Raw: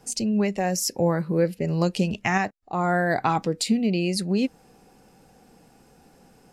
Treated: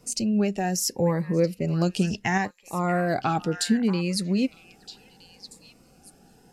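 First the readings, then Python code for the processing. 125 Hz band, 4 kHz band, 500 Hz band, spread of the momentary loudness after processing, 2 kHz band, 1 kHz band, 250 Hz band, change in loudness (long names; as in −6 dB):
0.0 dB, −0.5 dB, −1.5 dB, 5 LU, −2.5 dB, −2.5 dB, −0.5 dB, −1.0 dB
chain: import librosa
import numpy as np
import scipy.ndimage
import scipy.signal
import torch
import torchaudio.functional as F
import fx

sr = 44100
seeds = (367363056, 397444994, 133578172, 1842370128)

y = fx.echo_stepped(x, sr, ms=634, hz=1500.0, octaves=1.4, feedback_pct=70, wet_db=-9.0)
y = fx.notch_cascade(y, sr, direction='rising', hz=0.7)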